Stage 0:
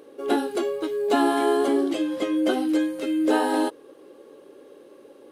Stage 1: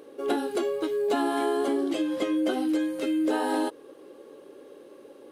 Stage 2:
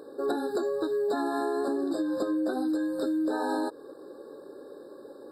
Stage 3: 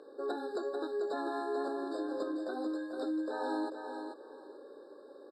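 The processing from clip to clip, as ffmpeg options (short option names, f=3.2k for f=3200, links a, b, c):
-af "acompressor=threshold=-23dB:ratio=4"
-af "acompressor=threshold=-28dB:ratio=6,afftfilt=real='re*eq(mod(floor(b*sr/1024/1800),2),0)':imag='im*eq(mod(floor(b*sr/1024/1800),2),0)':win_size=1024:overlap=0.75,volume=2.5dB"
-filter_complex "[0:a]highpass=320,lowpass=6.2k,asplit=2[a][b];[b]aecho=0:1:441|882|1323:0.473|0.0946|0.0189[c];[a][c]amix=inputs=2:normalize=0,volume=-6dB"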